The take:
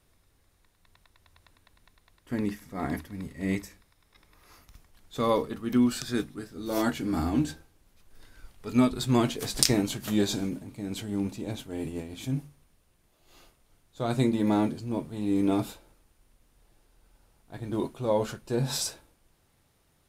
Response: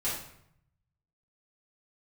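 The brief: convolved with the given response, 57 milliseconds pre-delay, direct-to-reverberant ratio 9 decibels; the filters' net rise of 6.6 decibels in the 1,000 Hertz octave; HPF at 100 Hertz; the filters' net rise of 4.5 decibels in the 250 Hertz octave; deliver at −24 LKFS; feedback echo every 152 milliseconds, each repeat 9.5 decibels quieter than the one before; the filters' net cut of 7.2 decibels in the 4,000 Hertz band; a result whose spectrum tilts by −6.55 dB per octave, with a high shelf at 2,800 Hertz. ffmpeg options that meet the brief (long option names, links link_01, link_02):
-filter_complex "[0:a]highpass=100,equalizer=frequency=250:width_type=o:gain=5,equalizer=frequency=1000:width_type=o:gain=8.5,highshelf=frequency=2800:gain=-3.5,equalizer=frequency=4000:width_type=o:gain=-6.5,aecho=1:1:152|304|456|608:0.335|0.111|0.0365|0.012,asplit=2[link_01][link_02];[1:a]atrim=start_sample=2205,adelay=57[link_03];[link_02][link_03]afir=irnorm=-1:irlink=0,volume=-15.5dB[link_04];[link_01][link_04]amix=inputs=2:normalize=0,volume=0.5dB"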